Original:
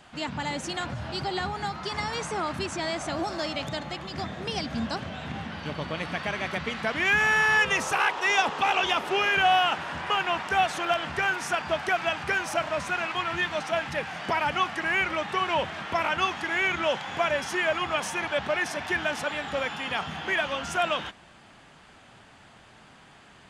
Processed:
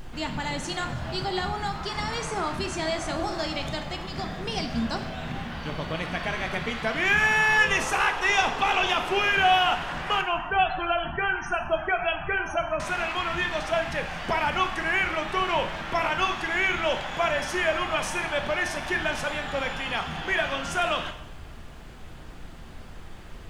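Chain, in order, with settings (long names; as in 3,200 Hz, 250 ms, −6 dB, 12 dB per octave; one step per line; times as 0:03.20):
background noise brown −41 dBFS
0:10.21–0:12.80: spectral peaks only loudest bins 32
coupled-rooms reverb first 0.66 s, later 2.1 s, from −19 dB, DRR 6 dB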